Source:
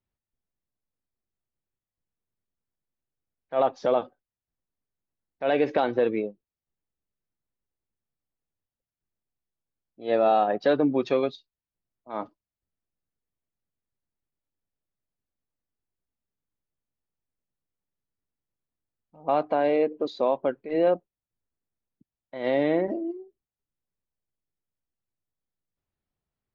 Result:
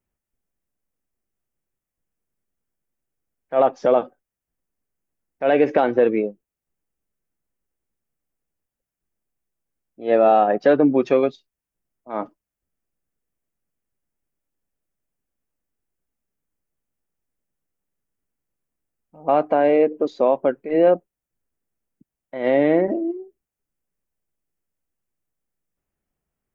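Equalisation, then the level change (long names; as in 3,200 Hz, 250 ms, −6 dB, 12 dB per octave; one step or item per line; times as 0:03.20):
graphic EQ with 15 bands 100 Hz −7 dB, 1,000 Hz −3 dB, 4,000 Hz −12 dB
+7.0 dB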